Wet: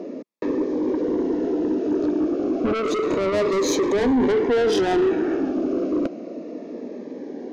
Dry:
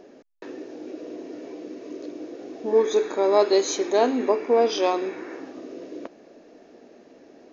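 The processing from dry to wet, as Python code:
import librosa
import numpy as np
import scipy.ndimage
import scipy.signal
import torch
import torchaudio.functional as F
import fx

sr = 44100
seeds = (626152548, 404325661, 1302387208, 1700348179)

p1 = scipy.signal.sosfilt(scipy.signal.butter(4, 190.0, 'highpass', fs=sr, output='sos'), x)
p2 = fx.tilt_eq(p1, sr, slope=-3.5)
p3 = fx.over_compress(p2, sr, threshold_db=-22.0, ratio=-0.5)
p4 = p2 + (p3 * librosa.db_to_amplitude(-1.5))
p5 = 10.0 ** (-20.5 / 20.0) * np.tanh(p4 / 10.0 ** (-20.5 / 20.0))
p6 = fx.notch_cascade(p5, sr, direction='falling', hz=0.31)
y = p6 * librosa.db_to_amplitude(5.0)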